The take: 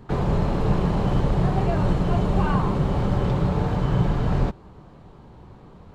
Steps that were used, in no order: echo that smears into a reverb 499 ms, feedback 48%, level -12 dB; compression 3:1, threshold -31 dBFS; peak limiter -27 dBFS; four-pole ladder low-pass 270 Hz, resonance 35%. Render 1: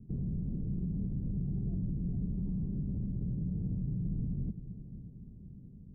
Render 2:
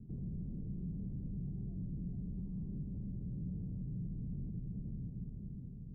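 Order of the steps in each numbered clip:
four-pole ladder low-pass > peak limiter > compression > echo that smears into a reverb; echo that smears into a reverb > peak limiter > compression > four-pole ladder low-pass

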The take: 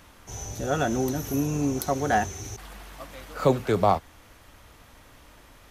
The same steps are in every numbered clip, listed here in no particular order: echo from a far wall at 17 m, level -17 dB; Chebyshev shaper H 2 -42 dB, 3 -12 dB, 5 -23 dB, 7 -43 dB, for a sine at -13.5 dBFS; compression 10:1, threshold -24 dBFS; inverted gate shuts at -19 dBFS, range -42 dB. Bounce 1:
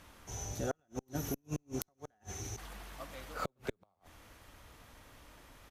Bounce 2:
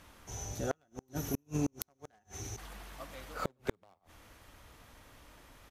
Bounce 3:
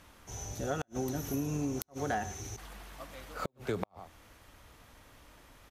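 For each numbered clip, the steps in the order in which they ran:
compression > echo from a far wall > inverted gate > Chebyshev shaper; echo from a far wall > Chebyshev shaper > inverted gate > compression; echo from a far wall > compression > Chebyshev shaper > inverted gate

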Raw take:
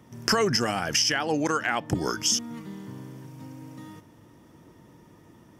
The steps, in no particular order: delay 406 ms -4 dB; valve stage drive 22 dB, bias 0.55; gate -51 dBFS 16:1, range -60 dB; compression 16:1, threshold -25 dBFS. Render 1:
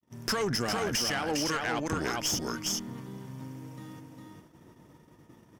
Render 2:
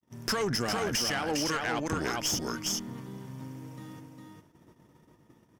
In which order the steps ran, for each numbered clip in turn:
delay > gate > valve stage > compression; gate > delay > valve stage > compression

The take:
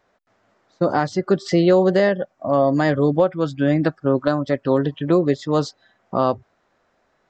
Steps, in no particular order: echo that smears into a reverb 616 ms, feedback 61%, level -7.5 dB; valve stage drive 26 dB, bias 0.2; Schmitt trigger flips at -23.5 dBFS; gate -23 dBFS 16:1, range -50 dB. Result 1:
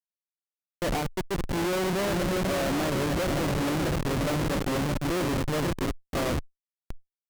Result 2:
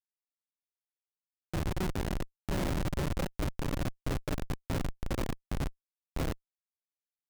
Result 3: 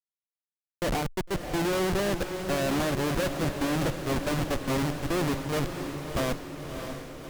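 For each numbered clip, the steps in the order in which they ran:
echo that smears into a reverb > gate > Schmitt trigger > valve stage; gate > valve stage > echo that smears into a reverb > Schmitt trigger; gate > Schmitt trigger > valve stage > echo that smears into a reverb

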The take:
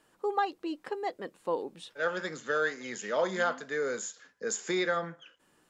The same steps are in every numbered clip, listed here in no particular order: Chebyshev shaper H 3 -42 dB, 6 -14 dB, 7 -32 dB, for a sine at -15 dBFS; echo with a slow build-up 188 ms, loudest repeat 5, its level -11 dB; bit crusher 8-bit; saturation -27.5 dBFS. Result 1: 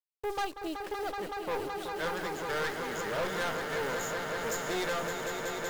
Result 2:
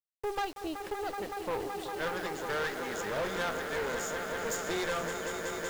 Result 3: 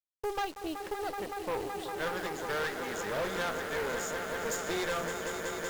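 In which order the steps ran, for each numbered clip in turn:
bit crusher > Chebyshev shaper > echo with a slow build-up > saturation; echo with a slow build-up > saturation > Chebyshev shaper > bit crusher; echo with a slow build-up > saturation > bit crusher > Chebyshev shaper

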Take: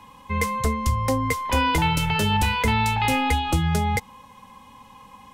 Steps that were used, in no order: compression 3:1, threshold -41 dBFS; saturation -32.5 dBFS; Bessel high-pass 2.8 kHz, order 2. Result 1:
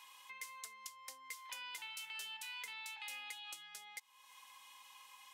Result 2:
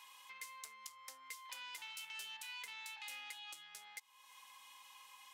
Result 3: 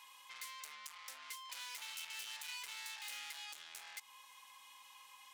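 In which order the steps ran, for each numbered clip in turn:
compression > Bessel high-pass > saturation; compression > saturation > Bessel high-pass; saturation > compression > Bessel high-pass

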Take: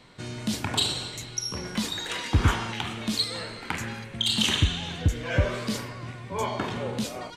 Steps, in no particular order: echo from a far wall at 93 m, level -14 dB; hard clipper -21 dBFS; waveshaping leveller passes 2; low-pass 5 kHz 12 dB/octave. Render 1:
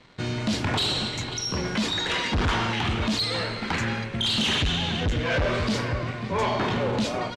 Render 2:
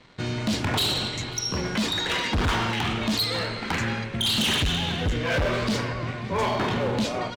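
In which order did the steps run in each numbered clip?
echo from a far wall > waveshaping leveller > hard clipper > low-pass; waveshaping leveller > low-pass > hard clipper > echo from a far wall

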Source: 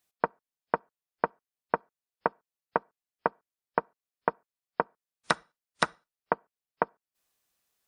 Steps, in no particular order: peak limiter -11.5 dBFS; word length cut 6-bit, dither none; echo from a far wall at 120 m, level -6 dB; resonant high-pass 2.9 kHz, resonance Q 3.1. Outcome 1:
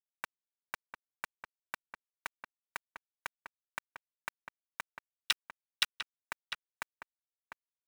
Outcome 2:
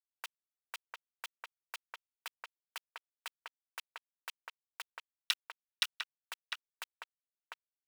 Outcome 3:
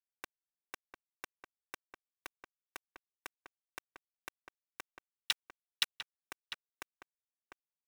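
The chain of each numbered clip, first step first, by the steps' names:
resonant high-pass > word length cut > echo from a far wall > peak limiter; word length cut > echo from a far wall > peak limiter > resonant high-pass; peak limiter > resonant high-pass > word length cut > echo from a far wall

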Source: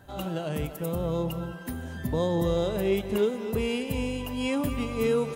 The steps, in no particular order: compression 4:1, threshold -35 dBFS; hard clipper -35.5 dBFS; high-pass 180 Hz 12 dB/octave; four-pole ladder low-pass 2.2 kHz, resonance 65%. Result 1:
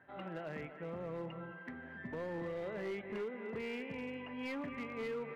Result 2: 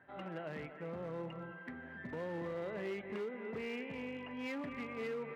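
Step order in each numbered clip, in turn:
four-pole ladder low-pass > compression > high-pass > hard clipper; four-pole ladder low-pass > compression > hard clipper > high-pass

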